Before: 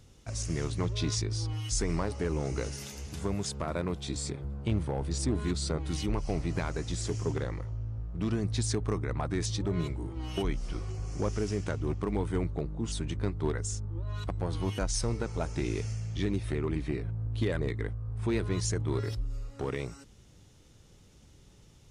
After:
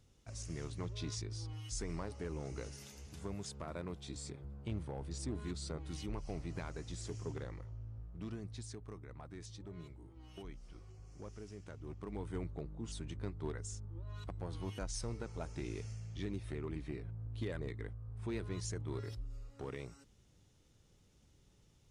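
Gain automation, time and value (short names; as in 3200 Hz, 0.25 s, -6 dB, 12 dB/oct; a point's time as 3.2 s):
8.03 s -11 dB
8.78 s -18.5 dB
11.62 s -18.5 dB
12.34 s -10.5 dB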